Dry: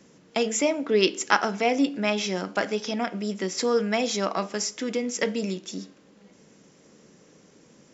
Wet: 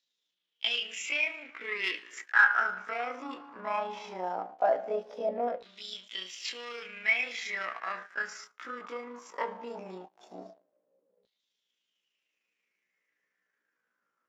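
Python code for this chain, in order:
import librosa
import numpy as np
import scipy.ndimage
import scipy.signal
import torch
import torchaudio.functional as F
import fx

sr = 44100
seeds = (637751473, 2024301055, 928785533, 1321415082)

y = fx.leveller(x, sr, passes=3)
y = fx.filter_lfo_bandpass(y, sr, shape='saw_down', hz=0.32, low_hz=510.0, high_hz=3900.0, q=7.4)
y = fx.stretch_grains(y, sr, factor=1.8, grain_ms=75.0)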